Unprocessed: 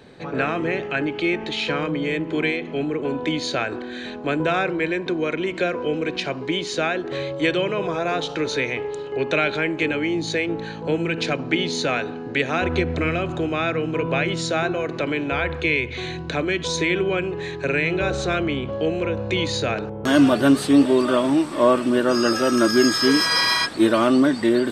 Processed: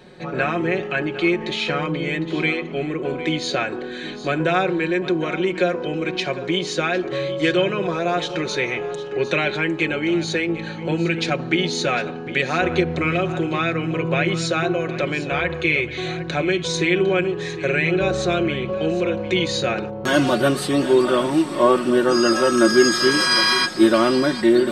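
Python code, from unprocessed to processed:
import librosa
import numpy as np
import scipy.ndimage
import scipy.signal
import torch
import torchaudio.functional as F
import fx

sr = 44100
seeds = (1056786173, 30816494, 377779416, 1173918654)

y = x + 0.63 * np.pad(x, (int(5.5 * sr / 1000.0), 0))[:len(x)]
y = y + 10.0 ** (-14.5 / 20.0) * np.pad(y, (int(755 * sr / 1000.0), 0))[:len(y)]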